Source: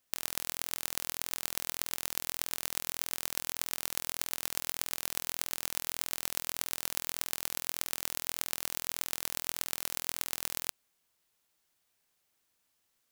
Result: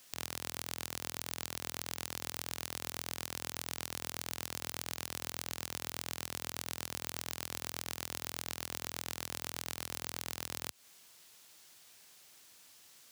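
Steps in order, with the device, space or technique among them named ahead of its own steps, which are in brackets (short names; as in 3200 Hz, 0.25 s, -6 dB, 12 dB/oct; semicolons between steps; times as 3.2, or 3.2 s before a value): broadcast voice chain (HPF 76 Hz 24 dB/oct; de-esser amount 50%; compressor, threshold -46 dBFS, peak gain reduction 10 dB; bell 5200 Hz +5.5 dB 2.2 oct; limiter -26 dBFS, peak gain reduction 7.5 dB); gain +14.5 dB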